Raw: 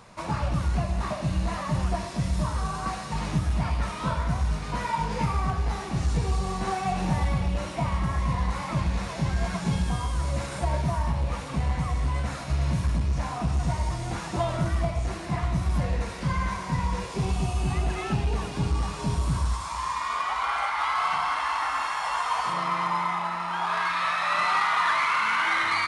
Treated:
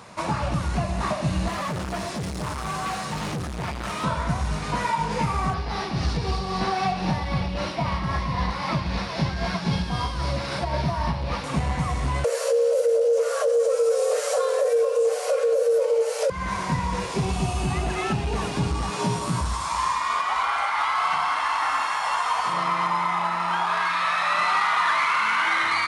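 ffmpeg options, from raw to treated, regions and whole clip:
-filter_complex "[0:a]asettb=1/sr,asplit=3[s0][s1][s2];[s0]atrim=end=1.484[s3];[s1]atrim=start=1.48:end=4.04,asetpts=PTS-STARTPTS,afade=t=in:d=0.004:c=qsin,afade=t=out:st=2.556:d=0.004:c=qsin,highpass=f=57:w=0.5412,highpass=f=57:w=1.3066,bandreject=f=960:w=25,asoftclip=type=hard:threshold=0.0266[s4];[s2]atrim=start=4.036[s5];[s3][s4]acrossfade=d=0.004:c1=hsin:c2=qsin[s6];[s6][s5]acrossfade=d=0.004:c1=qsin:c2=hsin,asettb=1/sr,asplit=3[s7][s8][s9];[s7]atrim=end=5.544[s10];[s8]atrim=start=5.54:end=11.44,asetpts=PTS-STARTPTS,afade=t=in:d=0.004:c=qsin,afade=t=out:st=5.896:d=0.004:c=qsin,highshelf=f=6000:t=q:w=3:g=-6.5,tremolo=f=3.8:d=0.36[s11];[s9]atrim=start=11.436[s12];[s10][s11]acrossfade=d=0.004:c1=hsin:c2=qsin[s13];[s13][s12]acrossfade=d=0.004:c1=qsin:c2=hsin,asettb=1/sr,asplit=3[s14][s15][s16];[s14]atrim=end=12.244[s17];[s15]atrim=start=12.24:end=16.3,asetpts=PTS-STARTPTS,afade=t=in:d=0.004:c=qsin,afade=t=out:st=4.056:d=0.004:c=qsin,bass=f=250:g=13,treble=f=4000:g=13,afreqshift=400[s18];[s16]atrim=start=16.296[s19];[s17][s18]acrossfade=d=0.004:c1=hsin:c2=qsin[s20];[s20][s19]acrossfade=d=0.004:c1=qsin:c2=hsin,asettb=1/sr,asplit=3[s21][s22][s23];[s21]atrim=end=18.904[s24];[s22]atrim=start=18.9:end=19.41,asetpts=PTS-STARTPTS,afade=t=in:d=0.004:c=qsin,afade=t=out:st=0.506:d=0.004:c=qsin,highpass=f=120:w=0.5412,highpass=f=120:w=1.3066,asplit=2[s25][s26];[s26]adelay=17,volume=0.708[s27];[s25][s27]amix=inputs=2:normalize=0,atrim=end_sample=22491[s28];[s23]atrim=start=19.406[s29];[s24][s28]acrossfade=d=0.004:c1=hsin:c2=qsin[s30];[s30][s29]acrossfade=d=0.004:c1=qsin:c2=hsin,highpass=f=120:p=1,alimiter=limit=0.0891:level=0:latency=1:release=342,volume=2.11"

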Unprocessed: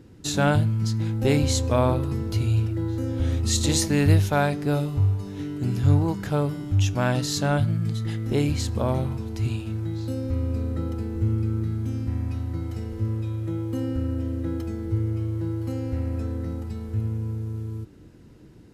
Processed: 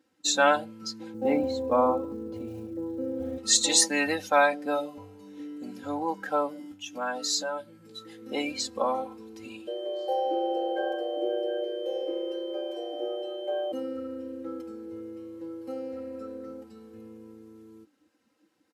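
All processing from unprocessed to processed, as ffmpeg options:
-filter_complex "[0:a]asettb=1/sr,asplit=3[s0][s1][s2];[s0]atrim=end=1.144[s3];[s1]atrim=start=1.14:end=3.38,asetpts=PTS-STARTPTS,afade=t=in:d=0.004:c=qsin,afade=t=out:st=2.236:d=0.004:c=qsin,lowpass=f=1000:p=1,acrusher=bits=9:mode=log:mix=0:aa=0.000001,lowshelf=f=240:g=11.5[s4];[s2]atrim=start=3.376[s5];[s3][s4]acrossfade=d=0.004:c1=hsin:c2=qsin[s6];[s6][s5]acrossfade=d=0.004:c1=qsin:c2=hsin,asettb=1/sr,asplit=3[s7][s8][s9];[s7]atrim=end=6.574[s10];[s8]atrim=start=6.57:end=8.22,asetpts=PTS-STARTPTS,afade=t=in:d=0.004:c=qsin,afade=t=out:st=1.646:d=0.004:c=qsin,highshelf=f=8700:g=5,acompressor=threshold=0.0501:ratio=6:attack=3.2:release=140:knee=1:detection=peak,asplit=2[s11][s12];[s12]adelay=16,volume=0.531[s13];[s11][s13]amix=inputs=2:normalize=0,atrim=end_sample=72765[s14];[s9]atrim=start=8.216[s15];[s10][s14]acrossfade=d=0.004:c1=hsin:c2=qsin[s16];[s16][s15]acrossfade=d=0.004:c1=qsin:c2=hsin,asettb=1/sr,asplit=3[s17][s18][s19];[s17]atrim=end=9.674[s20];[s18]atrim=start=9.67:end=13.72,asetpts=PTS-STARTPTS,afade=t=in:d=0.004:c=qsin,afade=t=out:st=4.046:d=0.004:c=qsin,afreqshift=260,aeval=exprs='val(0)+0.00398*sin(2*PI*3100*n/s)':c=same[s21];[s19]atrim=start=13.716[s22];[s20][s21]acrossfade=d=0.004:c1=hsin:c2=qsin[s23];[s23][s22]acrossfade=d=0.004:c1=qsin:c2=hsin,afftdn=nr=16:nf=-34,highpass=670,aecho=1:1:3.8:0.88,volume=1.41"

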